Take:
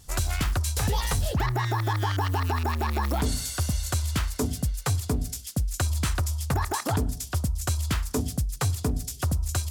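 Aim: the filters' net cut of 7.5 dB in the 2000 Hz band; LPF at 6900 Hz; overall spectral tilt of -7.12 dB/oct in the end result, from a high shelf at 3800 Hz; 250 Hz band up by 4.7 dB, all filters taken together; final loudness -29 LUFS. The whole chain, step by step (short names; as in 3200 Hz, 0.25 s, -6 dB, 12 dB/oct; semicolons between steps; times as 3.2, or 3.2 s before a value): LPF 6900 Hz; bell 250 Hz +6 dB; bell 2000 Hz -9 dB; high shelf 3800 Hz -4.5 dB; gain -1.5 dB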